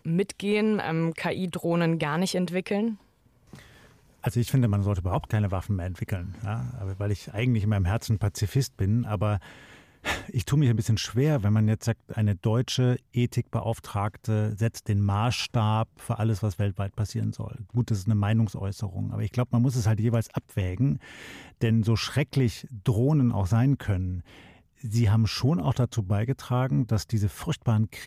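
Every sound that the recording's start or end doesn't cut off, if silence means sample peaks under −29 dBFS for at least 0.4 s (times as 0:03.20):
0:04.24–0:09.37
0:10.06–0:20.96
0:21.62–0:24.19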